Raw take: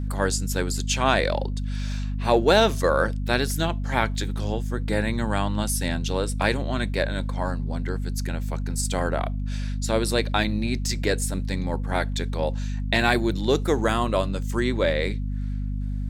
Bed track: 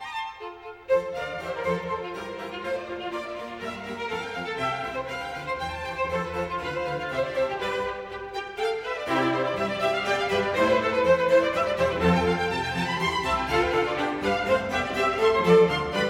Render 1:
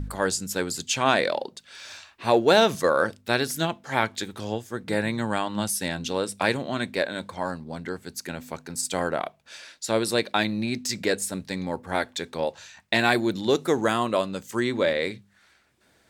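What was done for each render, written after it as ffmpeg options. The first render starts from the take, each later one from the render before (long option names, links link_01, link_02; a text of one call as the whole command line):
ffmpeg -i in.wav -af "bandreject=frequency=50:width_type=h:width=4,bandreject=frequency=100:width_type=h:width=4,bandreject=frequency=150:width_type=h:width=4,bandreject=frequency=200:width_type=h:width=4,bandreject=frequency=250:width_type=h:width=4" out.wav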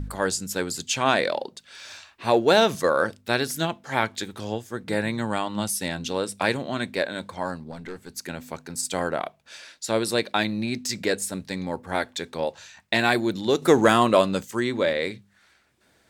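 ffmpeg -i in.wav -filter_complex "[0:a]asettb=1/sr,asplit=3[link_01][link_02][link_03];[link_01]atrim=end=5.314[link_04];[link_02]atrim=start=5.31:end=5.92,asetpts=PTS-STARTPTS,afade=type=in:duration=0.004:curve=qsin,afade=type=out:start_time=0.606:duration=0.004:curve=qsin,bandreject=frequency=1600:width=12[link_05];[link_03]atrim=start=5.916[link_06];[link_04][link_05]acrossfade=duration=0.004:curve1=hsin:curve2=qsin[link_07];[link_07][link_06]acrossfade=duration=0.004:curve1=qsin:curve2=hsin,asplit=3[link_08][link_09][link_10];[link_08]afade=type=out:start_time=7.7:duration=0.02[link_11];[link_09]aeval=exprs='(tanh(28.2*val(0)+0.4)-tanh(0.4))/28.2':channel_layout=same,afade=type=in:start_time=7.7:duration=0.02,afade=type=out:start_time=8.16:duration=0.02[link_12];[link_10]afade=type=in:start_time=8.16:duration=0.02[link_13];[link_11][link_12][link_13]amix=inputs=3:normalize=0,asettb=1/sr,asplit=3[link_14][link_15][link_16];[link_14]atrim=end=13.624[link_17];[link_15]atrim=start=13.62:end=14.45,asetpts=PTS-STARTPTS,afade=type=in:duration=0.004:curve=qsin,afade=type=out:start_time=0.826:duration=0.004:curve=qsin,acontrast=68[link_18];[link_16]atrim=start=14.446[link_19];[link_17][link_18]acrossfade=duration=0.004:curve1=hsin:curve2=qsin[link_20];[link_20][link_19]acrossfade=duration=0.004:curve1=qsin:curve2=hsin" out.wav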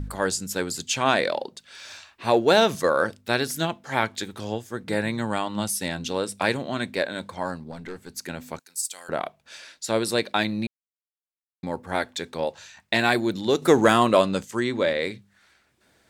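ffmpeg -i in.wav -filter_complex "[0:a]asettb=1/sr,asplit=3[link_01][link_02][link_03];[link_01]atrim=end=8.594[link_04];[link_02]atrim=start=8.59:end=9.09,asetpts=PTS-STARTPTS,afade=type=in:duration=0.004:curve=qsin,afade=type=out:start_time=0.496:duration=0.004:curve=qsin,aderivative[link_05];[link_03]atrim=start=9.086[link_06];[link_04][link_05]acrossfade=duration=0.004:curve1=hsin:curve2=qsin[link_07];[link_07][link_06]acrossfade=duration=0.004:curve1=qsin:curve2=hsin,asettb=1/sr,asplit=3[link_08][link_09][link_10];[link_08]atrim=end=14.194[link_11];[link_09]atrim=start=14.19:end=14.99,asetpts=PTS-STARTPTS,afade=type=in:duration=0.004:curve=qsin,afade=type=out:start_time=0.796:duration=0.004:curve=qsin,lowpass=11000[link_12];[link_10]atrim=start=14.986[link_13];[link_11][link_12]acrossfade=duration=0.004:curve1=hsin:curve2=qsin[link_14];[link_14][link_13]acrossfade=duration=0.004:curve1=qsin:curve2=hsin,asplit=3[link_15][link_16][link_17];[link_15]atrim=end=10.67,asetpts=PTS-STARTPTS,afade=type=out:start_time=10.666:duration=0.004:curve=hsin[link_18];[link_16]atrim=start=10.67:end=11.63,asetpts=PTS-STARTPTS,volume=0[link_19];[link_17]atrim=start=11.63,asetpts=PTS-STARTPTS,afade=type=in:duration=0.004:curve=hsin[link_20];[link_18][link_19][link_20]concat=n=3:v=0:a=1" out.wav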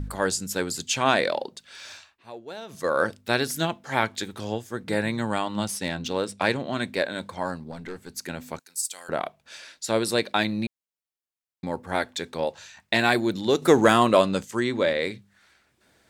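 ffmpeg -i in.wav -filter_complex "[0:a]asettb=1/sr,asplit=3[link_01][link_02][link_03];[link_01]atrim=end=5.654[link_04];[link_02]atrim=start=5.65:end=6.75,asetpts=PTS-STARTPTS,afade=type=in:duration=0.004:curve=qsin,afade=type=out:start_time=1.096:duration=0.004:curve=qsin,adynamicsmooth=sensitivity=4:basefreq=6700[link_05];[link_03]atrim=start=6.746[link_06];[link_04][link_05]acrossfade=duration=0.004:curve1=hsin:curve2=qsin[link_07];[link_07][link_06]acrossfade=duration=0.004:curve1=qsin:curve2=hsin,asplit=3[link_08][link_09][link_10];[link_08]atrim=end=2.23,asetpts=PTS-STARTPTS,afade=type=out:start_time=1.88:duration=0.35:silence=0.0891251[link_11];[link_09]atrim=start=2.23:end=2.67,asetpts=PTS-STARTPTS,volume=-21dB[link_12];[link_10]atrim=start=2.67,asetpts=PTS-STARTPTS,afade=type=in:duration=0.35:silence=0.0891251[link_13];[link_11][link_12][link_13]concat=n=3:v=0:a=1" out.wav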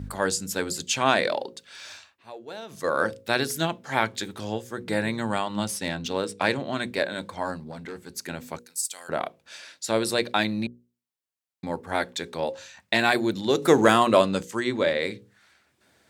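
ffmpeg -i in.wav -af "highpass=61,bandreject=frequency=60:width_type=h:width=6,bandreject=frequency=120:width_type=h:width=6,bandreject=frequency=180:width_type=h:width=6,bandreject=frequency=240:width_type=h:width=6,bandreject=frequency=300:width_type=h:width=6,bandreject=frequency=360:width_type=h:width=6,bandreject=frequency=420:width_type=h:width=6,bandreject=frequency=480:width_type=h:width=6,bandreject=frequency=540:width_type=h:width=6" out.wav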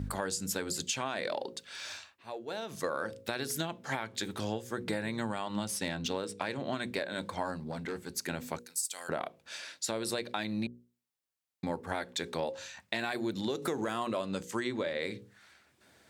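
ffmpeg -i in.wav -af "alimiter=limit=-15dB:level=0:latency=1:release=283,acompressor=threshold=-30dB:ratio=6" out.wav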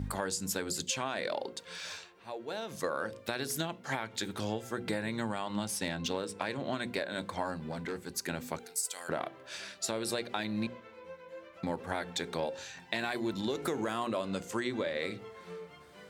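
ffmpeg -i in.wav -i bed.wav -filter_complex "[1:a]volume=-28dB[link_01];[0:a][link_01]amix=inputs=2:normalize=0" out.wav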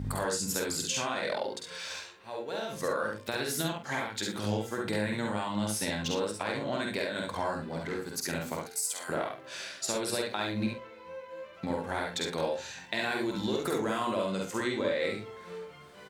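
ffmpeg -i in.wav -filter_complex "[0:a]asplit=2[link_01][link_02];[link_02]adelay=47,volume=-9.5dB[link_03];[link_01][link_03]amix=inputs=2:normalize=0,aecho=1:1:49|68:0.596|0.668" out.wav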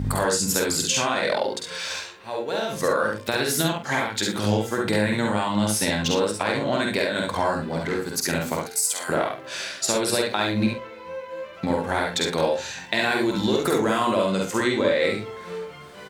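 ffmpeg -i in.wav -af "volume=9dB" out.wav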